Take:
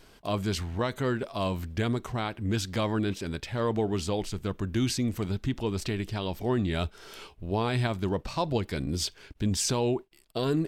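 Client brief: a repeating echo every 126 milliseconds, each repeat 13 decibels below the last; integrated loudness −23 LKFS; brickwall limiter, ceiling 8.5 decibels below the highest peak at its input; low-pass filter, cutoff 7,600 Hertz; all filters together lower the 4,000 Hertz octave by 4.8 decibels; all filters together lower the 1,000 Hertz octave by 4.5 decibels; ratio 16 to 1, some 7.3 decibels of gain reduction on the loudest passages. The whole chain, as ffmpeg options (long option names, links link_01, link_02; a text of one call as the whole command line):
ffmpeg -i in.wav -af "lowpass=7600,equalizer=frequency=1000:width_type=o:gain=-5.5,equalizer=frequency=4000:width_type=o:gain=-5.5,acompressor=threshold=-30dB:ratio=16,alimiter=level_in=6.5dB:limit=-24dB:level=0:latency=1,volume=-6.5dB,aecho=1:1:126|252|378:0.224|0.0493|0.0108,volume=17dB" out.wav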